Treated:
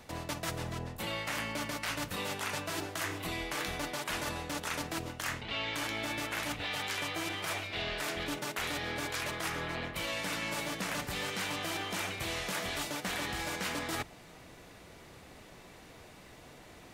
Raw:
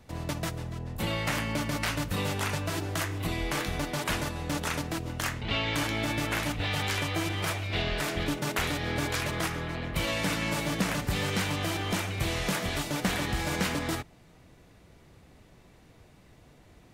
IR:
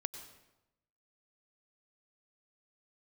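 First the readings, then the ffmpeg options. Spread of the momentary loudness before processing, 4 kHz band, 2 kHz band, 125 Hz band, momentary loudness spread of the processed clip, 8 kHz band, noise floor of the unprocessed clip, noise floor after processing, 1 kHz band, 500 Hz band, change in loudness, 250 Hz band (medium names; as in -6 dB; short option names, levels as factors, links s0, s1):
4 LU, -3.5 dB, -3.5 dB, -11.5 dB, 18 LU, -3.5 dB, -57 dBFS, -54 dBFS, -4.0 dB, -5.5 dB, -5.0 dB, -8.5 dB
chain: -af "lowshelf=f=290:g=-10,bandreject=f=50:t=h:w=6,bandreject=f=100:t=h:w=6,bandreject=f=150:t=h:w=6,areverse,acompressor=threshold=0.00794:ratio=6,areverse,volume=2.51"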